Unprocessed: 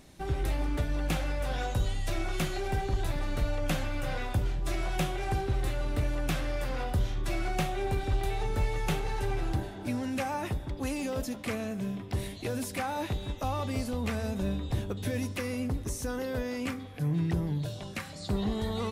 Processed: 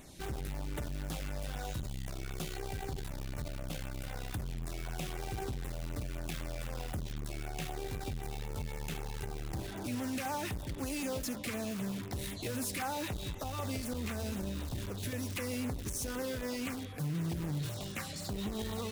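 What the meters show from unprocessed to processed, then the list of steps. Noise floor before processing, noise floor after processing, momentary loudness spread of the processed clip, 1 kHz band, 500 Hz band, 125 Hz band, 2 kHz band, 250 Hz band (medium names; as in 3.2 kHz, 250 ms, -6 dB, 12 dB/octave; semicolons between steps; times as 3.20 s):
-42 dBFS, -42 dBFS, 6 LU, -7.5 dB, -7.0 dB, -7.0 dB, -6.0 dB, -5.5 dB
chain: in parallel at -6.5 dB: integer overflow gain 35.5 dB; on the sum: peak limiter -26 dBFS, peak gain reduction 7.5 dB; treble shelf 2.2 kHz +4.5 dB; LFO notch saw down 3.9 Hz 480–5500 Hz; transformer saturation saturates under 190 Hz; trim -2 dB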